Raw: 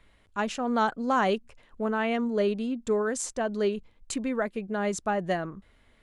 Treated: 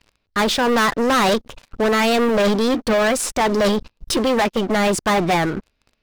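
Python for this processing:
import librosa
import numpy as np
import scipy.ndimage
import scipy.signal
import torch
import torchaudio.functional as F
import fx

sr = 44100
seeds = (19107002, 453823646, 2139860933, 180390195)

y = fx.high_shelf_res(x, sr, hz=5700.0, db=-8.5, q=1.5)
y = fx.formant_shift(y, sr, semitones=4)
y = fx.leveller(y, sr, passes=5)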